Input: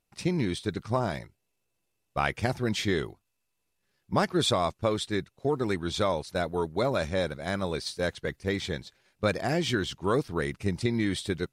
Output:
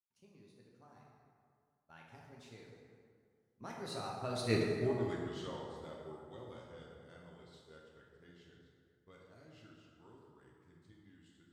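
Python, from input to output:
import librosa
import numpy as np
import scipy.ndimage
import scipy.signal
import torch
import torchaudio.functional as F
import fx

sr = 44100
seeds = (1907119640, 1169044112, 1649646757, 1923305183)

y = fx.doppler_pass(x, sr, speed_mps=43, closest_m=2.3, pass_at_s=4.6)
y = fx.rev_plate(y, sr, seeds[0], rt60_s=2.2, hf_ratio=0.55, predelay_ms=0, drr_db=-3.0)
y = F.gain(torch.from_numpy(y), 1.5).numpy()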